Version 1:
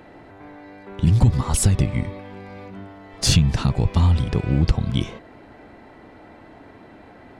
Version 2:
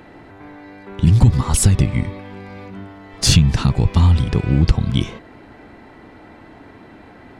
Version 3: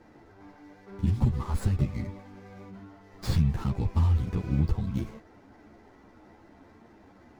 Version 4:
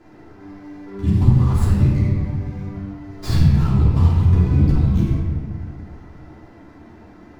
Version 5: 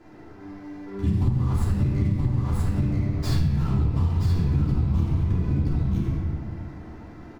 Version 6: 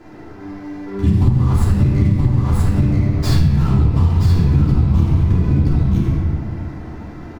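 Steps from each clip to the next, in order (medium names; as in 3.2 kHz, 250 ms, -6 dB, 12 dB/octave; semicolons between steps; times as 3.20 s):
peaking EQ 610 Hz -4 dB 0.82 oct; trim +4 dB
median filter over 15 samples; three-phase chorus; trim -8.5 dB
reverberation RT60 1.5 s, pre-delay 3 ms, DRR -4.5 dB; trim +2.5 dB
delay 975 ms -3.5 dB; compression, threshold -17 dBFS, peak gain reduction 10.5 dB; trim -1.5 dB
delay 1068 ms -24 dB; trim +8.5 dB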